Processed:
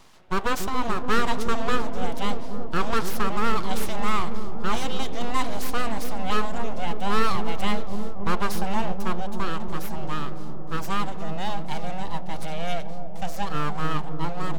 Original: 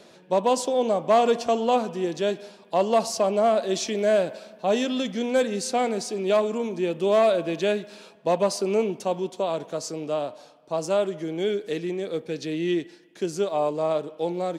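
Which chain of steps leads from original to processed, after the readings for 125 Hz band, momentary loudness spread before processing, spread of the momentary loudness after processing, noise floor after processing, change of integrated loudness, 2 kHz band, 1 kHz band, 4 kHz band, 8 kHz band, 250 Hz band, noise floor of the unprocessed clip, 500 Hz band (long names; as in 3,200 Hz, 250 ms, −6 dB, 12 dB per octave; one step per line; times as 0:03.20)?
+5.0 dB, 10 LU, 8 LU, −23 dBFS, −4.0 dB, +4.0 dB, 0.0 dB, 0.0 dB, −4.5 dB, −2.0 dB, −53 dBFS, −10.5 dB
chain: mains-hum notches 50/100/150/200/250 Hz
full-wave rectification
delay with a low-pass on its return 283 ms, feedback 79%, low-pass 540 Hz, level −5 dB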